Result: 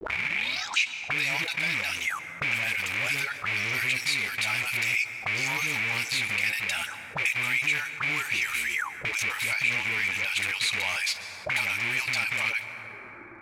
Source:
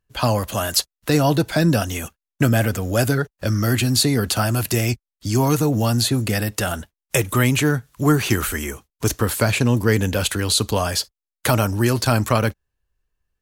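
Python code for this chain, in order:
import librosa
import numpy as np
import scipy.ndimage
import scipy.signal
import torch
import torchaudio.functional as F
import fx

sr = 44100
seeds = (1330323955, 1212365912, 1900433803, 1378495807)

y = fx.tape_start_head(x, sr, length_s=1.15)
y = fx.recorder_agc(y, sr, target_db=-4.5, rise_db_per_s=5.9, max_gain_db=30)
y = fx.bass_treble(y, sr, bass_db=15, treble_db=14)
y = fx.small_body(y, sr, hz=(850.0, 3800.0), ring_ms=45, db=12)
y = fx.dispersion(y, sr, late='highs', ms=112.0, hz=510.0)
y = fx.quant_companded(y, sr, bits=4)
y = fx.auto_wah(y, sr, base_hz=330.0, top_hz=2300.0, q=11.0, full_db=-8.5, direction='up')
y = fx.rev_plate(y, sr, seeds[0], rt60_s=3.5, hf_ratio=0.3, predelay_ms=115, drr_db=20.0)
y = fx.env_flatten(y, sr, amount_pct=50)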